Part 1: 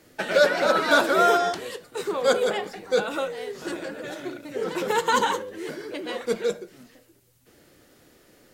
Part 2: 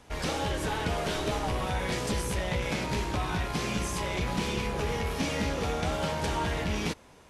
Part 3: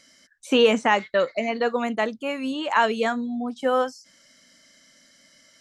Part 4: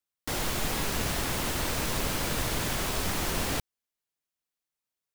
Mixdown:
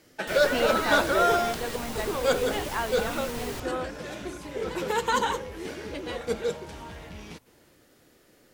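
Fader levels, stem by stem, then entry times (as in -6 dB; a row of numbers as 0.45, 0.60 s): -3.5, -12.0, -11.0, -7.5 dB; 0.00, 0.45, 0.00, 0.00 s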